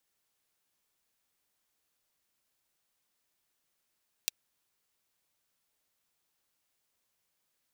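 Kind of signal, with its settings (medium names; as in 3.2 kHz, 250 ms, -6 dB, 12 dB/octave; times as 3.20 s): closed hi-hat, high-pass 3.2 kHz, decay 0.02 s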